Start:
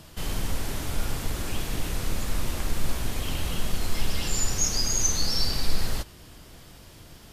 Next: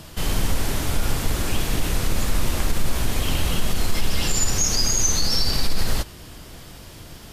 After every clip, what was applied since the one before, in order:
brickwall limiter −17 dBFS, peak gain reduction 7 dB
level +7 dB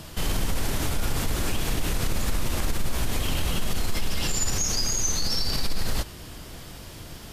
brickwall limiter −16 dBFS, peak gain reduction 6 dB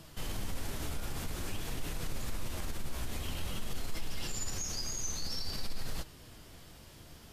flanger 0.5 Hz, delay 5.9 ms, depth 9 ms, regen +65%
level −7.5 dB

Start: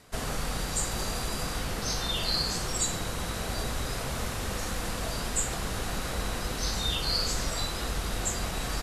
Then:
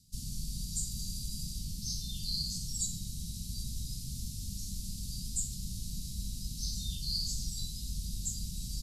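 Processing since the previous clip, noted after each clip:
elliptic band-stop filter 190–4,600 Hz, stop band 70 dB
level −4 dB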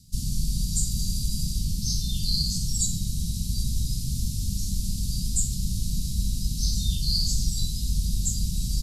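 low-shelf EQ 270 Hz +5 dB
level +8 dB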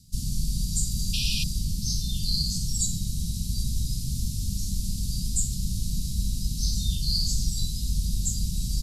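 sound drawn into the spectrogram noise, 0:01.13–0:01.44, 2,400–5,900 Hz −29 dBFS
level −1 dB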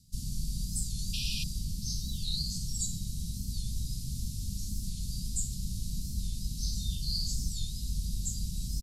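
wow of a warped record 45 rpm, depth 160 cents
level −7 dB

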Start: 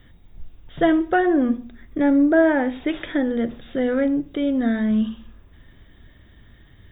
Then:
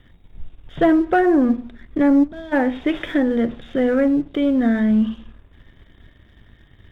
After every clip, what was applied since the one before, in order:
gain on a spectral selection 0:02.23–0:02.53, 270–3,200 Hz −23 dB
treble cut that deepens with the level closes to 1,900 Hz, closed at −15 dBFS
leveller curve on the samples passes 1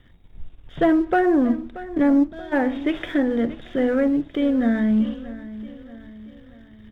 repeating echo 631 ms, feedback 48%, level −16 dB
level −2.5 dB

